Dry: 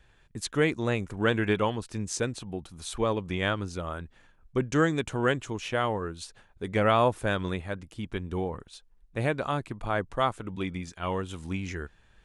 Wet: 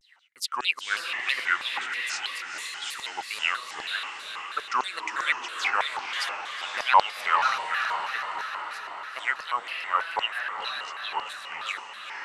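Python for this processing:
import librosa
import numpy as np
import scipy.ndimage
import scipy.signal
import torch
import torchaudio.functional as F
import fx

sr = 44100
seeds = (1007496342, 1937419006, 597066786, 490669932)

y = fx.filter_lfo_highpass(x, sr, shape='saw_down', hz=5.0, low_hz=900.0, high_hz=5100.0, q=7.2)
y = fx.echo_diffused(y, sr, ms=492, feedback_pct=59, wet_db=-4)
y = fx.vibrato_shape(y, sr, shape='square', rate_hz=3.1, depth_cents=250.0)
y = F.gain(torch.from_numpy(y), -2.0).numpy()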